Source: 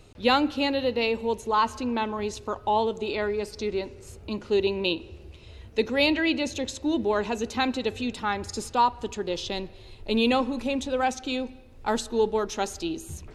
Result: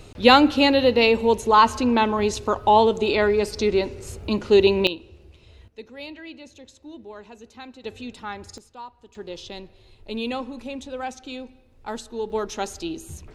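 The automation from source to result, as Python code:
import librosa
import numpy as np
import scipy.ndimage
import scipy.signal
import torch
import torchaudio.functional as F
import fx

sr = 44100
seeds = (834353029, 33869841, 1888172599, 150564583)

y = fx.gain(x, sr, db=fx.steps((0.0, 8.0), (4.87, -4.0), (5.68, -15.5), (7.84, -6.0), (8.58, -17.5), (9.15, -6.0), (12.3, 0.0)))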